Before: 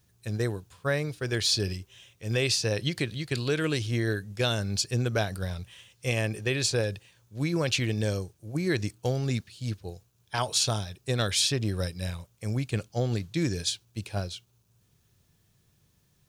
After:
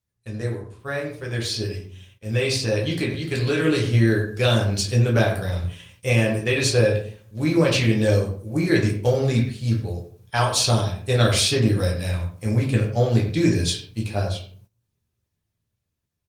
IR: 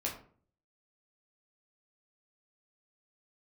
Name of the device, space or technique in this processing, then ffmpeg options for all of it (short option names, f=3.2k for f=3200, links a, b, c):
speakerphone in a meeting room: -filter_complex "[1:a]atrim=start_sample=2205[a];[0:a][a]afir=irnorm=-1:irlink=0,asplit=2[b][c];[c]adelay=90,highpass=300,lowpass=3.4k,asoftclip=type=hard:threshold=-18.5dB,volume=-11dB[d];[b][d]amix=inputs=2:normalize=0,dynaudnorm=f=770:g=7:m=10dB,agate=range=-16dB:threshold=-48dB:ratio=16:detection=peak,volume=-2dB" -ar 48000 -c:a libopus -b:a 32k